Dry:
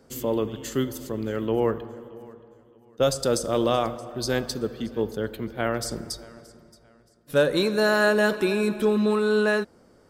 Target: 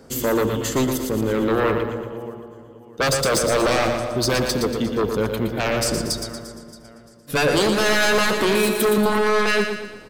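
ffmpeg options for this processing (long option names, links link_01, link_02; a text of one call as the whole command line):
ffmpeg -i in.wav -filter_complex "[0:a]asettb=1/sr,asplit=3[link_01][link_02][link_03];[link_01]atrim=end=8.554[link_04];[link_02]atrim=start=8.55:end=8.98,asetpts=PTS-STARTPTS,afade=type=in:duration=0.004:curve=qsin,afade=type=out:start_time=0.426:duration=0.004:curve=qsin,aemphasis=mode=production:type=bsi[link_05];[link_03]atrim=start=8.976[link_06];[link_04][link_05]acrossfade=duration=0.004:curve1=hsin:curve2=qsin[link_07];[link_07][link_06]acrossfade=duration=0.004:curve1=qsin:curve2=hsin,aeval=exprs='0.398*sin(PI/2*4.47*val(0)/0.398)':channel_layout=same,aecho=1:1:117|234|351|468|585|702:0.447|0.214|0.103|0.0494|0.0237|0.0114,volume=-7.5dB" out.wav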